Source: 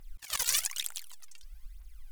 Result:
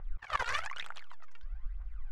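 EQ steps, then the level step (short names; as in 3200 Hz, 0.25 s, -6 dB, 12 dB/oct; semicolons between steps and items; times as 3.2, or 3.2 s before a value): synth low-pass 1300 Hz, resonance Q 1.5; bell 250 Hz -10 dB 0.8 oct; bell 990 Hz -2.5 dB 0.32 oct; +8.0 dB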